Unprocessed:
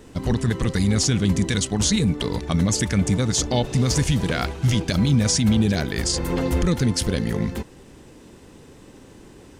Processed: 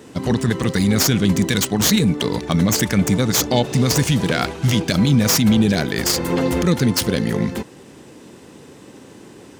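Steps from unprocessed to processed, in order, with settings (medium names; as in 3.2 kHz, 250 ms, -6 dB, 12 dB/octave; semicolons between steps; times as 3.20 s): tracing distortion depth 0.057 ms; high-pass 130 Hz 12 dB/octave; trim +5 dB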